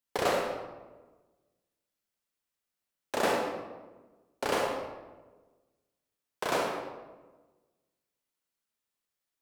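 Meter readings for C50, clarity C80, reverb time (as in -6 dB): 1.5 dB, 4.5 dB, 1.3 s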